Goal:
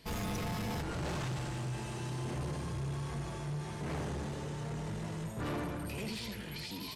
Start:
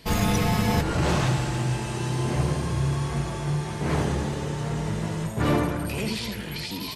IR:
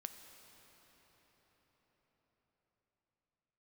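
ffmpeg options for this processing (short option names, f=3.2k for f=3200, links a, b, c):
-af "asoftclip=type=tanh:threshold=-24.5dB,volume=-8.5dB"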